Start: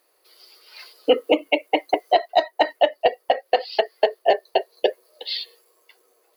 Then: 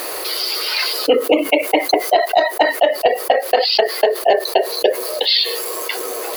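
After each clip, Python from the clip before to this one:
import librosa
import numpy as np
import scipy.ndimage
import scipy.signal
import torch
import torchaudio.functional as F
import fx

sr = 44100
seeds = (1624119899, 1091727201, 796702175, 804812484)

y = fx.env_flatten(x, sr, amount_pct=70)
y = F.gain(torch.from_numpy(y), 1.5).numpy()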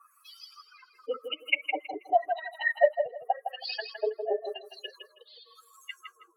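y = fx.bin_expand(x, sr, power=3.0)
y = fx.wah_lfo(y, sr, hz=0.9, low_hz=290.0, high_hz=3200.0, q=3.9)
y = fx.echo_feedback(y, sr, ms=161, feedback_pct=21, wet_db=-7.5)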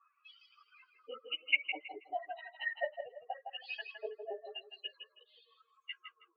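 y = fx.ladder_lowpass(x, sr, hz=3000.0, resonance_pct=65)
y = fx.ensemble(y, sr)
y = F.gain(torch.from_numpy(y), 2.0).numpy()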